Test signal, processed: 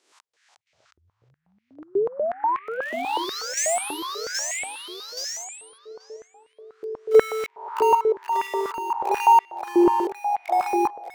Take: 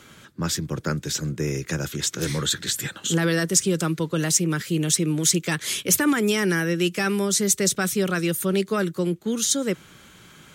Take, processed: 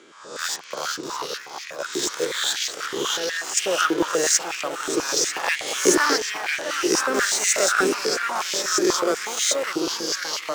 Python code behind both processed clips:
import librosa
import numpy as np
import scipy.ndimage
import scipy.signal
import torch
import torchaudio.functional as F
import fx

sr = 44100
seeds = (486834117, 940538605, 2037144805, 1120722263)

p1 = fx.spec_swells(x, sr, rise_s=0.73)
p2 = scipy.signal.sosfilt(scipy.signal.butter(4, 8200.0, 'lowpass', fs=sr, output='sos'), p1)
p3 = np.where(np.abs(p2) >= 10.0 ** (-18.5 / 20.0), p2, 0.0)
p4 = p2 + (p3 * librosa.db_to_amplitude(-4.5))
p5 = fx.chopper(p4, sr, hz=0.56, depth_pct=65, duty_pct=45)
p6 = p5 + fx.echo_filtered(p5, sr, ms=660, feedback_pct=43, hz=1300.0, wet_db=-8.0, dry=0)
p7 = fx.echo_pitch(p6, sr, ms=335, semitones=-2, count=2, db_per_echo=-3.0)
p8 = fx.filter_held_highpass(p7, sr, hz=8.2, low_hz=360.0, high_hz=2200.0)
y = p8 * librosa.db_to_amplitude(-6.0)